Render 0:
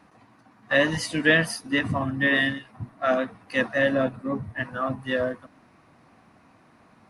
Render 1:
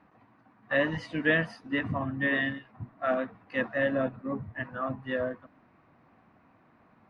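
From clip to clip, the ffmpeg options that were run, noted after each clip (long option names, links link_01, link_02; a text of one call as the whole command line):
ffmpeg -i in.wav -af "lowpass=2500,volume=-5dB" out.wav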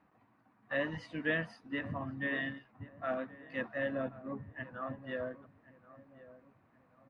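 ffmpeg -i in.wav -filter_complex "[0:a]asplit=2[link_01][link_02];[link_02]adelay=1078,lowpass=frequency=1300:poles=1,volume=-16.5dB,asplit=2[link_03][link_04];[link_04]adelay=1078,lowpass=frequency=1300:poles=1,volume=0.41,asplit=2[link_05][link_06];[link_06]adelay=1078,lowpass=frequency=1300:poles=1,volume=0.41,asplit=2[link_07][link_08];[link_08]adelay=1078,lowpass=frequency=1300:poles=1,volume=0.41[link_09];[link_01][link_03][link_05][link_07][link_09]amix=inputs=5:normalize=0,volume=-8dB" out.wav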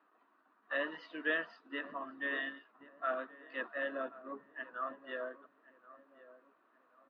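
ffmpeg -i in.wav -af "highpass=frequency=360:width=0.5412,highpass=frequency=360:width=1.3066,equalizer=frequency=520:width_type=q:width=4:gain=-6,equalizer=frequency=800:width_type=q:width=4:gain=-9,equalizer=frequency=1300:width_type=q:width=4:gain=4,equalizer=frequency=2200:width_type=q:width=4:gain=-10,lowpass=frequency=4000:width=0.5412,lowpass=frequency=4000:width=1.3066,volume=2.5dB" out.wav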